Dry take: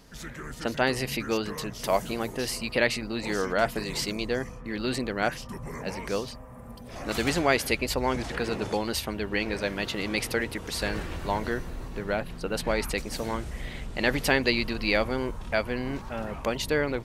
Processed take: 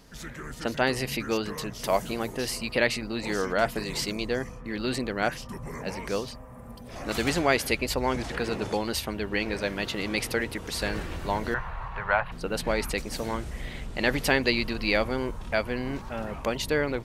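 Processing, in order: 11.54–12.32 EQ curve 140 Hz 0 dB, 280 Hz -20 dB, 970 Hz +14 dB, 2900 Hz +2 dB, 5600 Hz -13 dB, 9800 Hz -17 dB

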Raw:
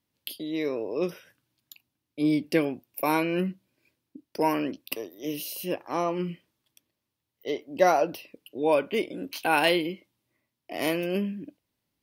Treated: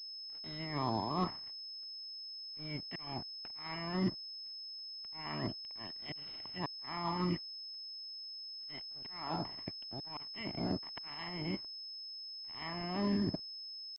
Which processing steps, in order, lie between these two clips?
spectral limiter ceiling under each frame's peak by 22 dB; comb 1 ms, depth 80%; reverse; compressor 20:1, threshold -35 dBFS, peak gain reduction 22.5 dB; reverse; auto swell 0.43 s; tempo 0.86×; added noise pink -68 dBFS; treble ducked by the level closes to 1200 Hz, closed at -39.5 dBFS; crossover distortion -59 dBFS; pulse-width modulation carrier 5200 Hz; gain +7 dB

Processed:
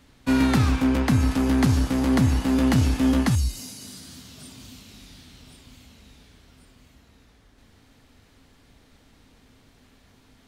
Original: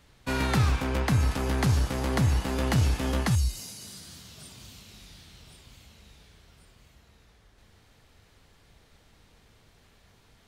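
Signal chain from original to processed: bell 260 Hz +12.5 dB 0.33 oct; gain +2 dB

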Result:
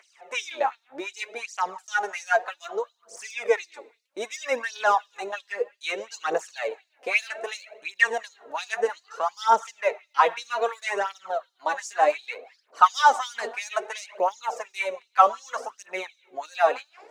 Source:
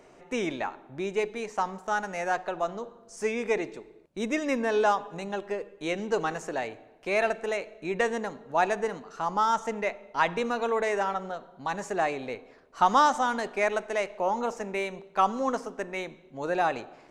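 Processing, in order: phaser 0.63 Hz, delay 4.5 ms, feedback 62%; LFO high-pass sine 2.8 Hz 450–5300 Hz

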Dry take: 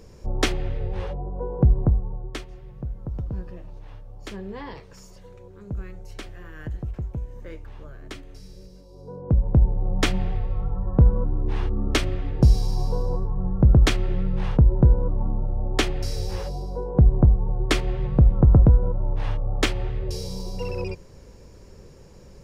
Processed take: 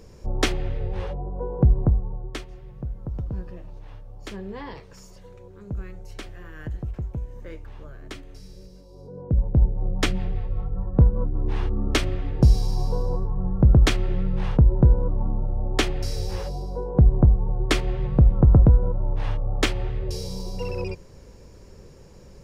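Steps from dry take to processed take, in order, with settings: 9.07–11.35 rotary speaker horn 5 Hz

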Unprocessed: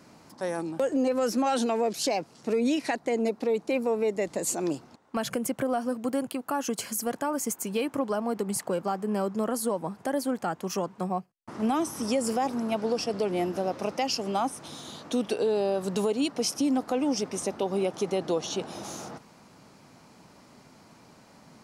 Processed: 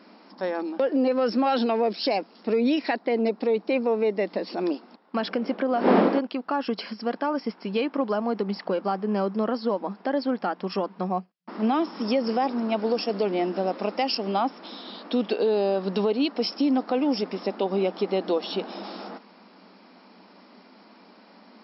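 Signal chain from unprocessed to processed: 5.17–6.18 wind noise 510 Hz -25 dBFS; FFT band-pass 180–5500 Hz; gain +3 dB

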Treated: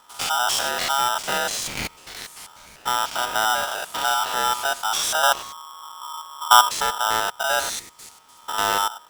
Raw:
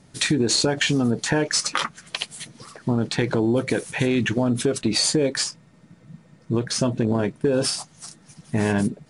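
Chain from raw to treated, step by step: stepped spectrum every 0.1 s; 5.23–6.69 tilt -4.5 dB/oct; polarity switched at an audio rate 1100 Hz

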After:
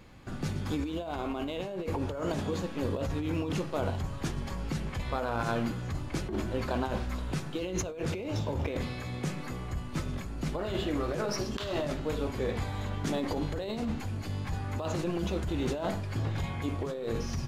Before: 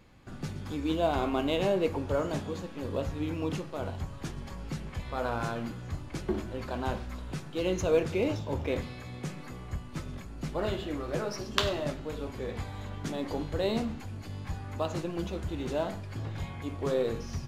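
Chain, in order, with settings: negative-ratio compressor -34 dBFS, ratio -1; gain +2.5 dB

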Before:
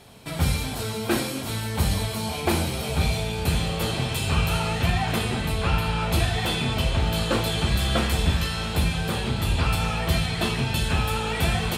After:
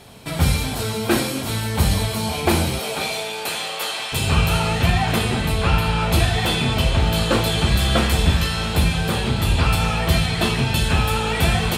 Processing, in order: 2.78–4.12 HPF 300 Hz -> 940 Hz 12 dB/oct; gain +5 dB

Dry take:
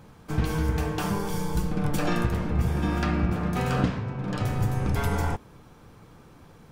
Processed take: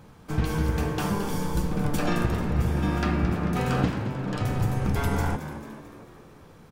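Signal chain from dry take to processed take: frequency-shifting echo 0.221 s, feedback 53%, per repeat +69 Hz, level -11.5 dB

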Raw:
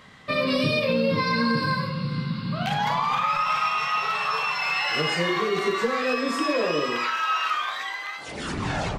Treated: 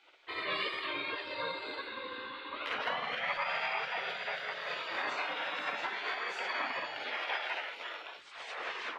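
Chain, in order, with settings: formant shift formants -2 st; spectral gate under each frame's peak -15 dB weak; three-band isolator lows -18 dB, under 330 Hz, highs -20 dB, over 3400 Hz

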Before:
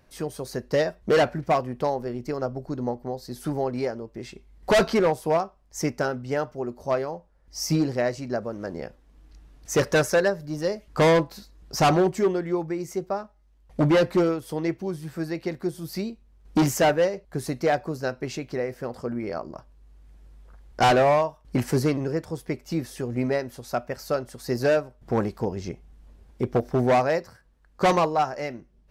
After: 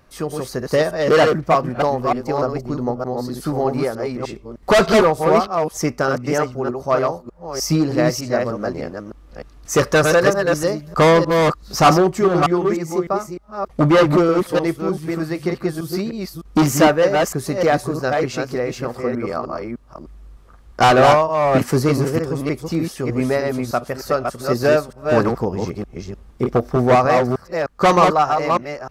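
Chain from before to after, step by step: reverse delay 0.304 s, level -3.5 dB; bell 1200 Hz +10 dB 0.2 oct; gain +5.5 dB

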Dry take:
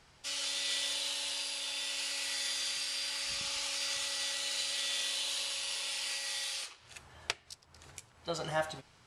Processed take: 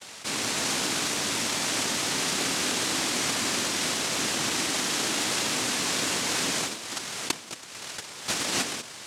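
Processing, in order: recorder AGC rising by 6.1 dB/s; gate with hold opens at -54 dBFS; noise vocoder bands 1; dynamic EQ 270 Hz, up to +8 dB, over -58 dBFS, Q 1.4; fast leveller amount 50%

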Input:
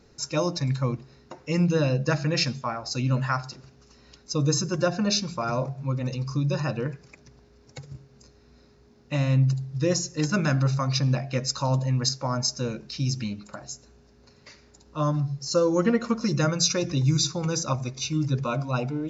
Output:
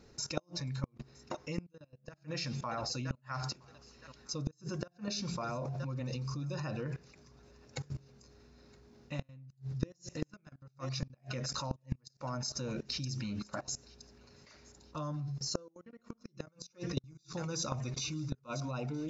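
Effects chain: level quantiser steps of 22 dB; thinning echo 0.968 s, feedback 44%, high-pass 1000 Hz, level -23 dB; flipped gate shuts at -27 dBFS, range -36 dB; gain +6.5 dB

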